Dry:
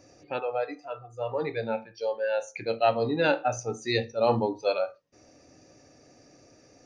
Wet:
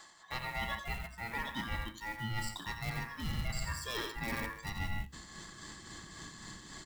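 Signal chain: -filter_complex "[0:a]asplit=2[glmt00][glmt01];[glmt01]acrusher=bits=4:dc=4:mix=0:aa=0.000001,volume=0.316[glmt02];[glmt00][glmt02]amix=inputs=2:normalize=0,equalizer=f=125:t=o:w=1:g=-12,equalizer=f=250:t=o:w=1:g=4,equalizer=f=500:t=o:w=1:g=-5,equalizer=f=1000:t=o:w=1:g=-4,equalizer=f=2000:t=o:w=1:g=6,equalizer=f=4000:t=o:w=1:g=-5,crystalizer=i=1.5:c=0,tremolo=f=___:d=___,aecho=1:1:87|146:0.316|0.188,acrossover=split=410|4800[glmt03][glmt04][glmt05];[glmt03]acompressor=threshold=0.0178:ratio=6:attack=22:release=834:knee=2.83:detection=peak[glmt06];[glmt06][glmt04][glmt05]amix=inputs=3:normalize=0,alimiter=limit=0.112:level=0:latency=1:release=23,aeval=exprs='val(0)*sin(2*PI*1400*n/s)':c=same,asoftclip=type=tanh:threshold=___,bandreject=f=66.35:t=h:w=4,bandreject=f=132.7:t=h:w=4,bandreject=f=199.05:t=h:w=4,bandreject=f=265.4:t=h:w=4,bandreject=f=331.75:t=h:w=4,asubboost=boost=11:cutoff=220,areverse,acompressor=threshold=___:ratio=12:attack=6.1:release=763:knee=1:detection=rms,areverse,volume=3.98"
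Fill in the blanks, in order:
3.7, 0.52, 0.0447, 0.00708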